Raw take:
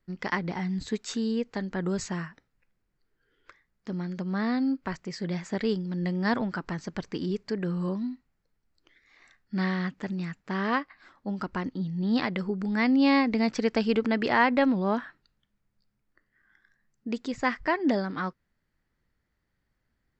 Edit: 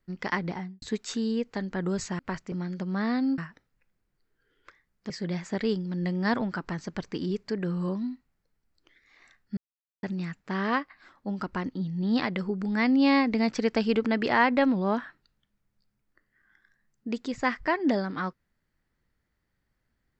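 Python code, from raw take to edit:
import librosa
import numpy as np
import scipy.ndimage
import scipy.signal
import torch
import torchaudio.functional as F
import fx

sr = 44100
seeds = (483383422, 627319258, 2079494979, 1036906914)

y = fx.studio_fade_out(x, sr, start_s=0.47, length_s=0.35)
y = fx.edit(y, sr, fx.swap(start_s=2.19, length_s=1.72, other_s=4.77, other_length_s=0.33),
    fx.silence(start_s=9.57, length_s=0.46), tone=tone)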